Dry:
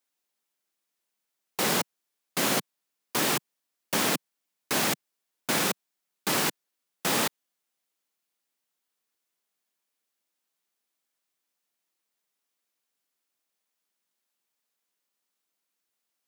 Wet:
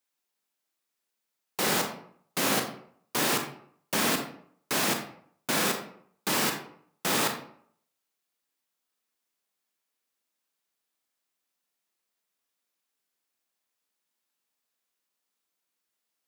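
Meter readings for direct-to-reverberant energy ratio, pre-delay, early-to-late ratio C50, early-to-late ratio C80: 3.5 dB, 28 ms, 7.0 dB, 10.0 dB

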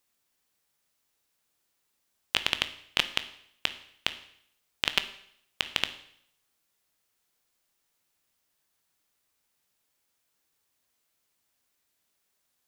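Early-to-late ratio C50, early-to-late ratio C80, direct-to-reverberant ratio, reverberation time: 13.5 dB, 16.5 dB, 10.0 dB, 0.65 s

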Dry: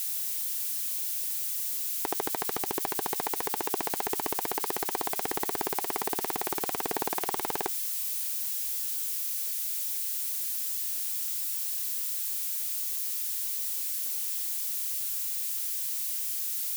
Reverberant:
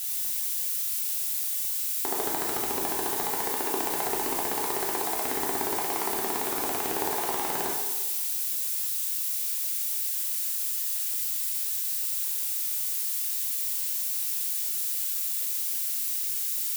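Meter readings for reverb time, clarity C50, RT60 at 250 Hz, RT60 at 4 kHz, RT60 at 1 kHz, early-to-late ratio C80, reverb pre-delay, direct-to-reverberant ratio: 1.2 s, 1.5 dB, 1.2 s, 1.1 s, 1.2 s, 4.0 dB, 4 ms, −3.0 dB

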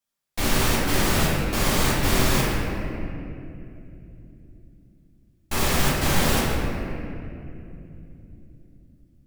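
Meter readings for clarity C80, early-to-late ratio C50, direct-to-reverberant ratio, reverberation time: 0.0 dB, −1.5 dB, −7.5 dB, 2.9 s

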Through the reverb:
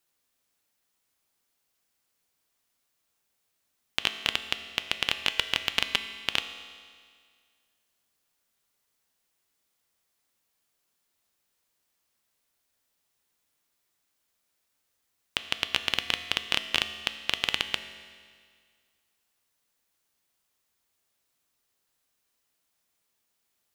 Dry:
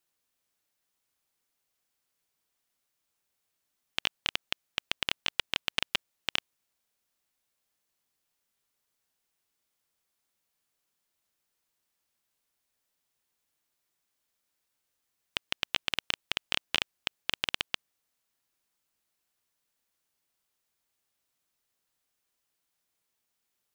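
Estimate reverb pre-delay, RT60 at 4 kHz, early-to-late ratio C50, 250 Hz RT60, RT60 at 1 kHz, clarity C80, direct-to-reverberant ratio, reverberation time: 4 ms, 1.9 s, 10.5 dB, 1.9 s, 1.9 s, 11.5 dB, 9.0 dB, 1.9 s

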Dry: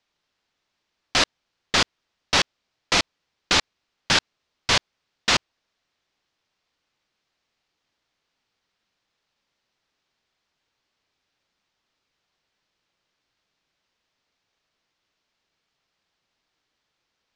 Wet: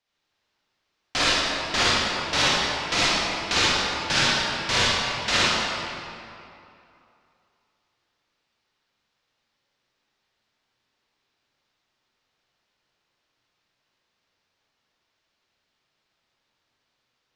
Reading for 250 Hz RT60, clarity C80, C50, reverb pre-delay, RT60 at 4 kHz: 2.6 s, −3.5 dB, −6.5 dB, 40 ms, 1.8 s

